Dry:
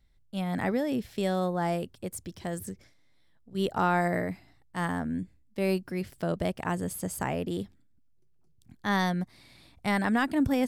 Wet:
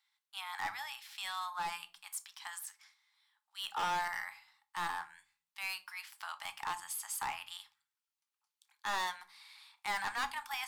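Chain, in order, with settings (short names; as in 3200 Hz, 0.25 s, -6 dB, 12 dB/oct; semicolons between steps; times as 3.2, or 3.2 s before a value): rippled Chebyshev high-pass 820 Hz, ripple 3 dB; overloaded stage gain 33.5 dB; shoebox room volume 210 m³, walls furnished, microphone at 0.53 m; gain +1.5 dB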